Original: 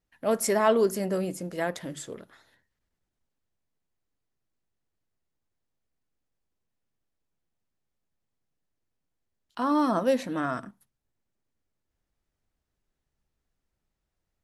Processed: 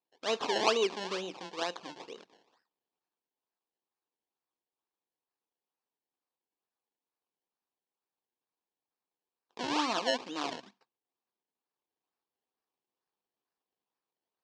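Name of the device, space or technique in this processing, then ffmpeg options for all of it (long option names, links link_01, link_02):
circuit-bent sampling toy: -af "acrusher=samples=25:mix=1:aa=0.000001:lfo=1:lforange=25:lforate=2.2,highpass=500,equalizer=frequency=600:width_type=q:width=4:gain=-10,equalizer=frequency=1400:width_type=q:width=4:gain=-7,equalizer=frequency=2000:width_type=q:width=4:gain=-8,lowpass=frequency=5700:width=0.5412,lowpass=frequency=5700:width=1.3066"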